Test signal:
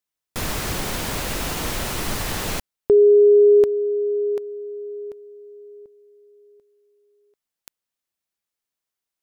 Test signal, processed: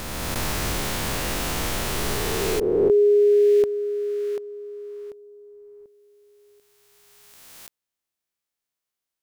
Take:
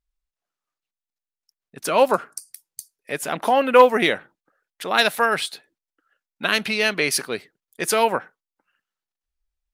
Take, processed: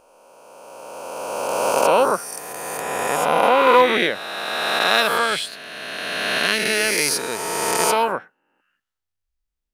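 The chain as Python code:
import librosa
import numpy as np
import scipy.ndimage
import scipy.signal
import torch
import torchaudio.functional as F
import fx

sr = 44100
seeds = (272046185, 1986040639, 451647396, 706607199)

y = fx.spec_swells(x, sr, rise_s=2.77)
y = y * librosa.db_to_amplitude(-4.0)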